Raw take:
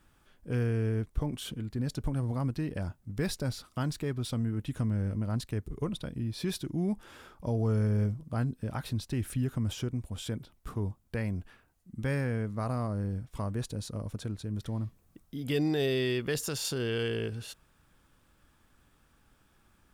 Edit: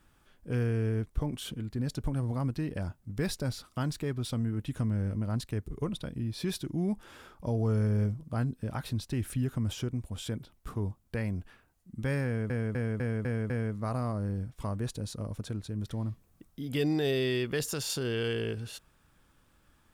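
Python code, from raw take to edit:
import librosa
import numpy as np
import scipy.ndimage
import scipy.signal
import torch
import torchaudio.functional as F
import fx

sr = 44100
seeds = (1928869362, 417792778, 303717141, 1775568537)

y = fx.edit(x, sr, fx.repeat(start_s=12.25, length_s=0.25, count=6), tone=tone)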